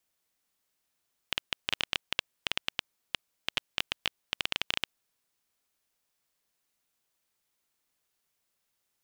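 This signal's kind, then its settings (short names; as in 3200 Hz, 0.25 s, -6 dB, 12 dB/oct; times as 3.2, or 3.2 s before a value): random clicks 10/s -9 dBFS 3.69 s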